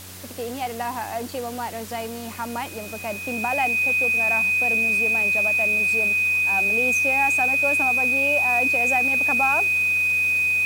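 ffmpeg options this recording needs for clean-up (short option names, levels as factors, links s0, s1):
-af "adeclick=t=4,bandreject=f=92.8:t=h:w=4,bandreject=f=185.6:t=h:w=4,bandreject=f=278.4:t=h:w=4,bandreject=f=371.2:t=h:w=4,bandreject=f=464:t=h:w=4,bandreject=f=556.8:t=h:w=4,bandreject=f=2500:w=30,afwtdn=0.01"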